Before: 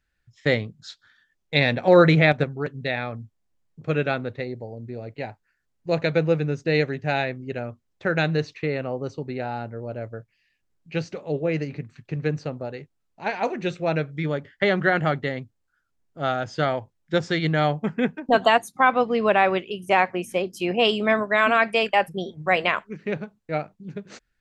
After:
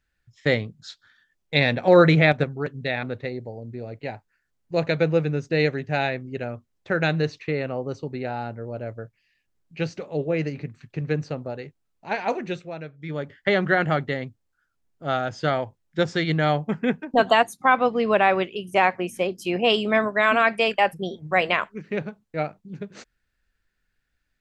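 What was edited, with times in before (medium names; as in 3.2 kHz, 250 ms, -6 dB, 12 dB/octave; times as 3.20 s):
3.03–4.18 s: delete
13.52–14.49 s: dip -12 dB, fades 0.37 s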